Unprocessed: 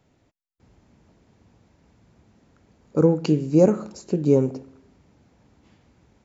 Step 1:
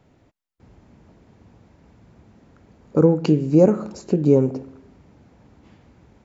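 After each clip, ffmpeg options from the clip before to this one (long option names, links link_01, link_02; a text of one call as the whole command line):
ffmpeg -i in.wav -filter_complex "[0:a]highshelf=frequency=3400:gain=-8,asplit=2[link_01][link_02];[link_02]acompressor=threshold=-25dB:ratio=6,volume=1dB[link_03];[link_01][link_03]amix=inputs=2:normalize=0" out.wav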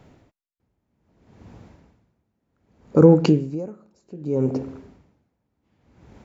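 ffmpeg -i in.wav -filter_complex "[0:a]asplit=2[link_01][link_02];[link_02]alimiter=limit=-11dB:level=0:latency=1:release=16,volume=2.5dB[link_03];[link_01][link_03]amix=inputs=2:normalize=0,aeval=exprs='val(0)*pow(10,-30*(0.5-0.5*cos(2*PI*0.64*n/s))/20)':channel_layout=same,volume=-1dB" out.wav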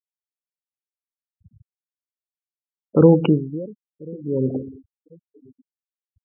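ffmpeg -i in.wav -af "aecho=1:1:1037|2074:0.0668|0.0227,aresample=8000,aresample=44100,afftfilt=real='re*gte(hypot(re,im),0.0562)':imag='im*gte(hypot(re,im),0.0562)':win_size=1024:overlap=0.75" out.wav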